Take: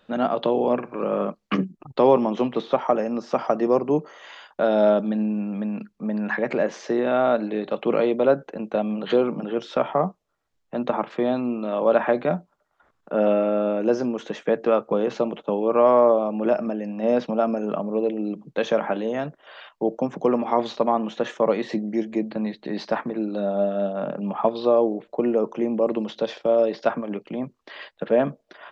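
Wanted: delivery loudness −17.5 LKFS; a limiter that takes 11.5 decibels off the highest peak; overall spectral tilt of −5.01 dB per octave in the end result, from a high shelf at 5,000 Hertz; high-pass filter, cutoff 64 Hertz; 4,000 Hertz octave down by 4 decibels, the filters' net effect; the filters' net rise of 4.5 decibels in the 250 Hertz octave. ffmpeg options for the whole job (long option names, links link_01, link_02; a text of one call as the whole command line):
ffmpeg -i in.wav -af "highpass=64,equalizer=frequency=250:width_type=o:gain=5.5,equalizer=frequency=4000:width_type=o:gain=-9,highshelf=frequency=5000:gain=9,volume=8dB,alimiter=limit=-7.5dB:level=0:latency=1" out.wav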